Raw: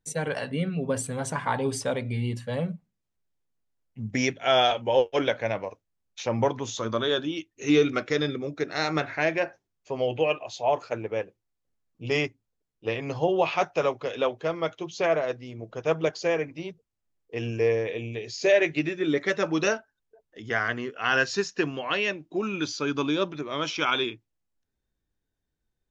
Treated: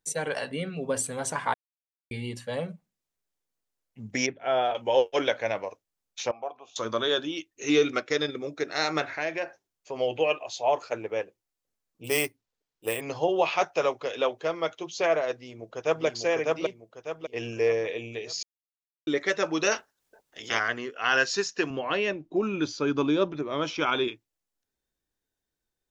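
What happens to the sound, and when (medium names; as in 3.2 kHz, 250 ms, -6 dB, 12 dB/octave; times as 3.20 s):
1.54–2.11 s: mute
4.26–4.75 s: tape spacing loss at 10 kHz 44 dB
6.31–6.76 s: vowel filter a
7.89–8.35 s: transient shaper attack 0 dB, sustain -6 dB
9.05–9.96 s: compression 1.5:1, threshold -33 dBFS
12.04–13.01 s: careless resampling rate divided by 4×, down none, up hold
15.35–16.06 s: echo throw 600 ms, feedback 40%, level -1.5 dB
18.43–19.07 s: mute
19.71–20.58 s: spectral peaks clipped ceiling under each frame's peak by 21 dB
21.70–24.08 s: tilt EQ -3 dB/octave
whole clip: tone controls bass -9 dB, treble +4 dB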